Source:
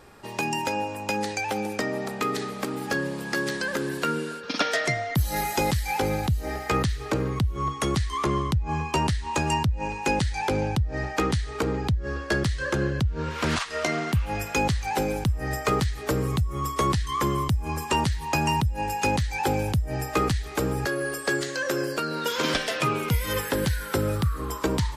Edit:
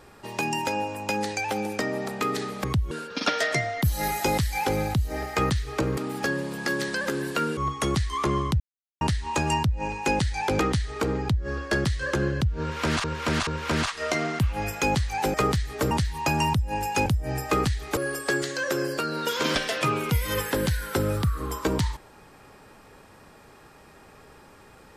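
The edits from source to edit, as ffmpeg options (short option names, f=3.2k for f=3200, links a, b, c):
-filter_complex "[0:a]asplit=14[a][b][c][d][e][f][g][h][i][j][k][l][m][n];[a]atrim=end=2.642[o];[b]atrim=start=7.298:end=7.572[p];[c]atrim=start=4.238:end=7.302[q];[d]atrim=start=2.638:end=4.242[r];[e]atrim=start=7.568:end=8.6,asetpts=PTS-STARTPTS,afade=t=out:st=1.028:d=0.004:c=hsin[s];[f]atrim=start=8.6:end=9.01,asetpts=PTS-STARTPTS,volume=0[t];[g]atrim=start=9.01:end=10.592,asetpts=PTS-STARTPTS,afade=t=in:d=0.004:c=hsin[u];[h]atrim=start=11.178:end=13.632[v];[i]atrim=start=13.198:end=13.632[w];[j]atrim=start=13.198:end=15.072[x];[k]atrim=start=15.618:end=16.192[y];[l]atrim=start=17.978:end=19.132[z];[m]atrim=start=19.698:end=20.612[aa];[n]atrim=start=20.958[ab];[o][p]acrossfade=d=0.004:c1=hsin:c2=hsin[ac];[ac][q]acrossfade=d=0.004:c1=hsin:c2=hsin[ad];[ad][r]acrossfade=d=0.004:c1=hsin:c2=hsin[ae];[s][t][u]concat=n=3:v=0:a=1[af];[ae][af]acrossfade=d=0.004:c1=hsin:c2=hsin[ag];[ag][v]acrossfade=d=0.004:c1=hsin:c2=hsin[ah];[ah][w]acrossfade=d=0.004:c1=hsin:c2=hsin[ai];[ai][x]acrossfade=d=0.004:c1=hsin:c2=hsin[aj];[aj][y]acrossfade=d=0.004:c1=hsin:c2=hsin[ak];[ak][z]acrossfade=d=0.004:c1=hsin:c2=hsin[al];[al][aa]acrossfade=d=0.004:c1=hsin:c2=hsin[am];[am][ab]acrossfade=d=0.004:c1=hsin:c2=hsin"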